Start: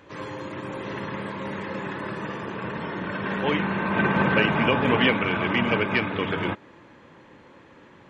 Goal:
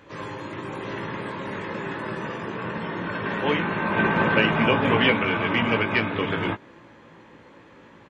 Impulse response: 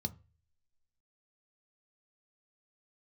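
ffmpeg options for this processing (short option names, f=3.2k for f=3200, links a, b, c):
-filter_complex "[0:a]asplit=2[a][b];[b]adelay=18,volume=-5.5dB[c];[a][c]amix=inputs=2:normalize=0"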